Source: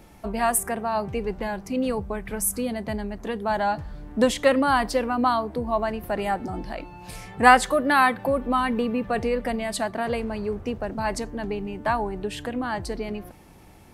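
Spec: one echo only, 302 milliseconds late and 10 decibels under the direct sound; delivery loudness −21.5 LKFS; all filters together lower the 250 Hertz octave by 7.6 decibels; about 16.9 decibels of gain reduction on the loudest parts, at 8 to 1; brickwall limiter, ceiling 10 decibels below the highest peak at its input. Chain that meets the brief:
parametric band 250 Hz −8.5 dB
downward compressor 8 to 1, threshold −27 dBFS
brickwall limiter −27.5 dBFS
single-tap delay 302 ms −10 dB
level +15 dB

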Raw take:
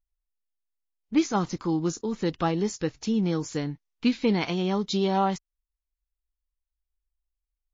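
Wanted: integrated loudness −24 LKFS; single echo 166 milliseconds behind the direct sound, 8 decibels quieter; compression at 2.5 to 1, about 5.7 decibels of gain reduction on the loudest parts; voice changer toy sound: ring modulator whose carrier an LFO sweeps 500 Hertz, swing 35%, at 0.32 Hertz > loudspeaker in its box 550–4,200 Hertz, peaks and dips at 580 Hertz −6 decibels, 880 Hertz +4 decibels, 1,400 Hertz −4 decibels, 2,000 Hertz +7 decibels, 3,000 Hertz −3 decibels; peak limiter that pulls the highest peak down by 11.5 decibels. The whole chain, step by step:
downward compressor 2.5 to 1, threshold −26 dBFS
brickwall limiter −27.5 dBFS
single-tap delay 166 ms −8 dB
ring modulator whose carrier an LFO sweeps 500 Hz, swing 35%, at 0.32 Hz
loudspeaker in its box 550–4,200 Hz, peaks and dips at 580 Hz −6 dB, 880 Hz +4 dB, 1,400 Hz −4 dB, 2,000 Hz +7 dB, 3,000 Hz −3 dB
level +18.5 dB

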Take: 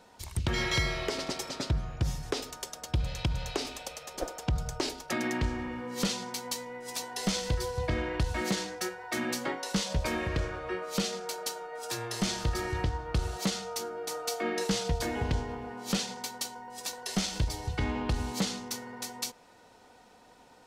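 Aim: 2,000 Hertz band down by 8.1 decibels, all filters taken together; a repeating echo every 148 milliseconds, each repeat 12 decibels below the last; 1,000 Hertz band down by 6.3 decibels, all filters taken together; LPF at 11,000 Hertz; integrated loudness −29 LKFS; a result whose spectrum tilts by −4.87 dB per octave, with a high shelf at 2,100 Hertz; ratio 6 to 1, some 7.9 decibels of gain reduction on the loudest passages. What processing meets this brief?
low-pass filter 11,000 Hz
parametric band 1,000 Hz −6 dB
parametric band 2,000 Hz −4.5 dB
high-shelf EQ 2,100 Hz −6.5 dB
downward compressor 6 to 1, threshold −33 dBFS
repeating echo 148 ms, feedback 25%, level −12 dB
level +10.5 dB

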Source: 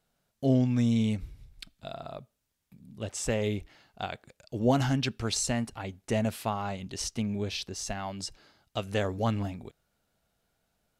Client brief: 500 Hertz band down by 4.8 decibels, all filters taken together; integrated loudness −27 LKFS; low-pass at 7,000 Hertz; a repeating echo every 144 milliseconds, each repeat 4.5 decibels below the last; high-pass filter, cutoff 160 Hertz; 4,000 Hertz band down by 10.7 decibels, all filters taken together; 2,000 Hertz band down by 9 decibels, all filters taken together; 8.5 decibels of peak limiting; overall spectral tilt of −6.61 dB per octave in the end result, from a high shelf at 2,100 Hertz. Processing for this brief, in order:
high-pass filter 160 Hz
low-pass filter 7,000 Hz
parametric band 500 Hz −5 dB
parametric band 2,000 Hz −6 dB
high-shelf EQ 2,100 Hz −8 dB
parametric band 4,000 Hz −3.5 dB
brickwall limiter −23.5 dBFS
repeating echo 144 ms, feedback 60%, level −4.5 dB
level +8.5 dB

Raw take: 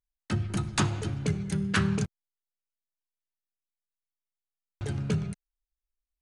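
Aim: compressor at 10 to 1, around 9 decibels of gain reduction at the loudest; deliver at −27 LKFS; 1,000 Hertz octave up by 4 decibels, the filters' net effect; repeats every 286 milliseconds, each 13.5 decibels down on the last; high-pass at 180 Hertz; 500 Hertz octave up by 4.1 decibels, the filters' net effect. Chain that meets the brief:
high-pass filter 180 Hz
parametric band 500 Hz +5 dB
parametric band 1,000 Hz +4 dB
downward compressor 10 to 1, threshold −29 dBFS
repeating echo 286 ms, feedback 21%, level −13.5 dB
level +9 dB

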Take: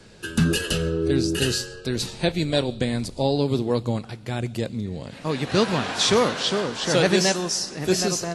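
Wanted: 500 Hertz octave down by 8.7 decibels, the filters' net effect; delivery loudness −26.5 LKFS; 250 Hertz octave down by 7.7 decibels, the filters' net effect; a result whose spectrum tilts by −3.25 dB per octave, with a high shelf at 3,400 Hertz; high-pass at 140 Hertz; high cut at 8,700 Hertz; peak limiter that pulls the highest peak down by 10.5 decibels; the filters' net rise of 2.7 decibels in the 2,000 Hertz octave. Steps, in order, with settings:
high-pass filter 140 Hz
low-pass filter 8,700 Hz
parametric band 250 Hz −7.5 dB
parametric band 500 Hz −8.5 dB
parametric band 2,000 Hz +5.5 dB
high-shelf EQ 3,400 Hz −4 dB
level +3 dB
brickwall limiter −15 dBFS

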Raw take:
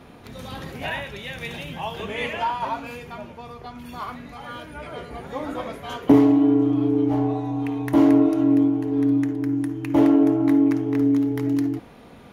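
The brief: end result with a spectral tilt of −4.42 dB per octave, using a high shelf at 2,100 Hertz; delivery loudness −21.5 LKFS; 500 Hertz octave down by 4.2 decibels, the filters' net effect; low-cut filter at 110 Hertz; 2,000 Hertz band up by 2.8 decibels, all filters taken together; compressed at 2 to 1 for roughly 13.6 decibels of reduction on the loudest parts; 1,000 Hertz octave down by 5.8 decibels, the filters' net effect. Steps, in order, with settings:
high-pass filter 110 Hz
parametric band 500 Hz −4.5 dB
parametric band 1,000 Hz −7 dB
parametric band 2,000 Hz +3 dB
high-shelf EQ 2,100 Hz +4 dB
downward compressor 2 to 1, threshold −37 dBFS
level +12.5 dB

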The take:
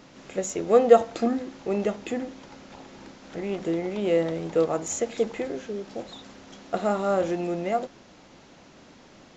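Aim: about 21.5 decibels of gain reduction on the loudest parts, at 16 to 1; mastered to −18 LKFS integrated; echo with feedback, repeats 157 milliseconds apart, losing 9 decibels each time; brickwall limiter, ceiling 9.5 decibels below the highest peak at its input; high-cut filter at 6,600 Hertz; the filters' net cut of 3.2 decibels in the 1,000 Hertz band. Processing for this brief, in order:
low-pass filter 6,600 Hz
parametric band 1,000 Hz −5.5 dB
downward compressor 16 to 1, threshold −32 dBFS
brickwall limiter −31.5 dBFS
repeating echo 157 ms, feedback 35%, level −9 dB
level +22.5 dB

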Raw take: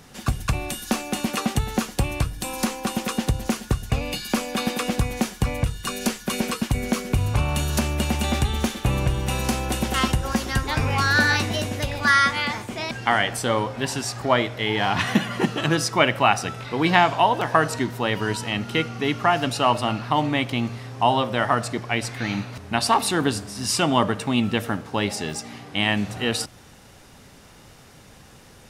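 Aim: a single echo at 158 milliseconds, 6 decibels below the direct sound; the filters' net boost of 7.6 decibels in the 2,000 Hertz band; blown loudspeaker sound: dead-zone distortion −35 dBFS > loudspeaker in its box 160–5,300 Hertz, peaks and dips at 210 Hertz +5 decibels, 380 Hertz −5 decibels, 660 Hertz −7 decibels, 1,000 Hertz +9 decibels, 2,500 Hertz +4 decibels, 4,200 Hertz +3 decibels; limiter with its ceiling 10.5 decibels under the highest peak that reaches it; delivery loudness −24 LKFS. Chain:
parametric band 2,000 Hz +7.5 dB
brickwall limiter −7.5 dBFS
single-tap delay 158 ms −6 dB
dead-zone distortion −35 dBFS
loudspeaker in its box 160–5,300 Hz, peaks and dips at 210 Hz +5 dB, 380 Hz −5 dB, 660 Hz −7 dB, 1,000 Hz +9 dB, 2,500 Hz +4 dB, 4,200 Hz +3 dB
level −3 dB

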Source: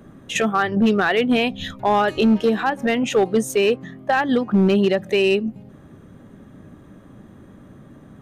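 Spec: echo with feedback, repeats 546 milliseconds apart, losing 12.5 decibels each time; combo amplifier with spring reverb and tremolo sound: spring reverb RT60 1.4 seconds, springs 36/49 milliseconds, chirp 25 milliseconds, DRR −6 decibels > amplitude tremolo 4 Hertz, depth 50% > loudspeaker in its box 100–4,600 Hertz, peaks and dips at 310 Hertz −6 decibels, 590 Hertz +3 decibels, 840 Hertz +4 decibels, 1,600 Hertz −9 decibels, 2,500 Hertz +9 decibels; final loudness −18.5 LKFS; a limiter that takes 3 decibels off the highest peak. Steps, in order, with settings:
brickwall limiter −13 dBFS
repeating echo 546 ms, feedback 24%, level −12.5 dB
spring reverb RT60 1.4 s, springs 36/49 ms, chirp 25 ms, DRR −6 dB
amplitude tremolo 4 Hz, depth 50%
loudspeaker in its box 100–4,600 Hz, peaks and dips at 310 Hz −6 dB, 590 Hz +3 dB, 840 Hz +4 dB, 1,600 Hz −9 dB, 2,500 Hz +9 dB
level −3 dB

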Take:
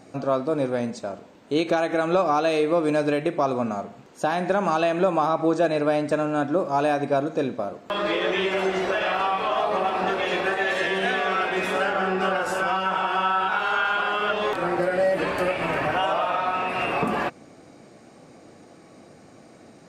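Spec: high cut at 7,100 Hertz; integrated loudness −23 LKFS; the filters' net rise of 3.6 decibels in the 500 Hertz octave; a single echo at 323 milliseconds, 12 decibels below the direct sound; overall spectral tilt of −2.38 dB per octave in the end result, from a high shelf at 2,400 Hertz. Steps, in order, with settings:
low-pass filter 7,100 Hz
parametric band 500 Hz +4 dB
high-shelf EQ 2,400 Hz +7.5 dB
single-tap delay 323 ms −12 dB
level −2.5 dB

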